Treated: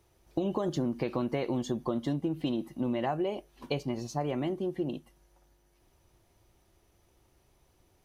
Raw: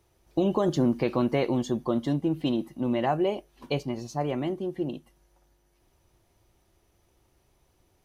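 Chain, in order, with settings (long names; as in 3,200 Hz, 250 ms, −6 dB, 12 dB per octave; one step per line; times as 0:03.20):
downward compressor 6 to 1, threshold −27 dBFS, peak gain reduction 8 dB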